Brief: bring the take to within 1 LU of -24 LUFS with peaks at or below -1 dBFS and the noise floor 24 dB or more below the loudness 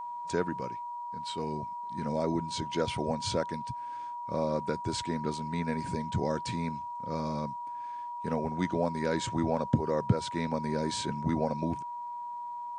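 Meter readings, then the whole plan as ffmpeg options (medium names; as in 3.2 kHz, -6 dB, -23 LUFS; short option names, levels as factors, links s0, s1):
steady tone 960 Hz; tone level -36 dBFS; loudness -33.0 LUFS; peak level -12.5 dBFS; loudness target -24.0 LUFS
-> -af "bandreject=f=960:w=30"
-af "volume=2.82"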